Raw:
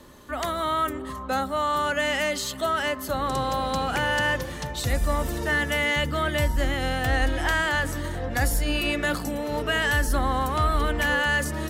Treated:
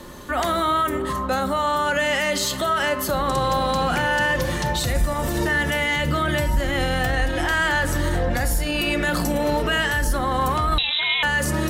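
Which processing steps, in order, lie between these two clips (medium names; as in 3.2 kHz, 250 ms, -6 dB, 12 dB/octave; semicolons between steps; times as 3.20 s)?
peak limiter -23.5 dBFS, peak gain reduction 10.5 dB; reverberation RT60 0.70 s, pre-delay 6 ms, DRR 8.5 dB; 10.78–11.23 s: frequency inversion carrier 3.9 kHz; trim +9 dB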